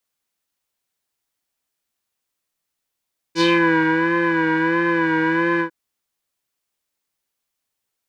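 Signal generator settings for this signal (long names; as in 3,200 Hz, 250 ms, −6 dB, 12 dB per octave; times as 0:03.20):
subtractive patch with vibrato E4, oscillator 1 square, oscillator 2 saw, interval +7 semitones, oscillator 2 level −3 dB, sub −11.5 dB, noise −9.5 dB, filter lowpass, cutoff 1,400 Hz, Q 2.9, filter envelope 2 octaves, filter decay 0.25 s, filter sustain 15%, attack 57 ms, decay 0.61 s, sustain −4 dB, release 0.10 s, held 2.25 s, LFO 1.5 Hz, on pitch 56 cents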